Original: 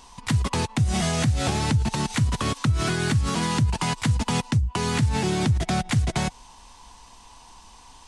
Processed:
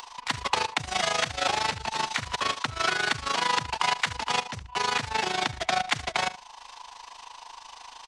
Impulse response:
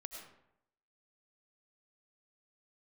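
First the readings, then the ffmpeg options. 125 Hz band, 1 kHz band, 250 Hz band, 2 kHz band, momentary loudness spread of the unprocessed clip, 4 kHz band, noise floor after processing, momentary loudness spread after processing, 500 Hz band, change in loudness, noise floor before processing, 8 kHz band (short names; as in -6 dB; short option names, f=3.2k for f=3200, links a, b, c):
-20.0 dB, +3.0 dB, -16.0 dB, +3.5 dB, 3 LU, +2.5 dB, -49 dBFS, 18 LU, -3.0 dB, -3.0 dB, -49 dBFS, -3.5 dB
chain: -filter_complex "[0:a]asplit=2[a][b];[b]aecho=0:1:69|138:0.178|0.032[c];[a][c]amix=inputs=2:normalize=0,tremolo=f=26:d=0.788,acrossover=split=520 5900:gain=0.0631 1 0.178[d][e][f];[d][e][f]amix=inputs=3:normalize=0,acompressor=mode=upward:threshold=-45dB:ratio=2.5,volume=7dB"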